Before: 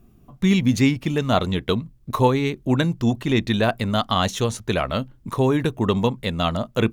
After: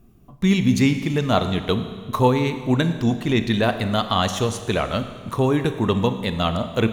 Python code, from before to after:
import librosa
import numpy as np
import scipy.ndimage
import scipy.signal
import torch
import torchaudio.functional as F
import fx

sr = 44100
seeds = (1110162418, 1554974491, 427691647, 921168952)

y = fx.rev_schroeder(x, sr, rt60_s=1.7, comb_ms=28, drr_db=9.0)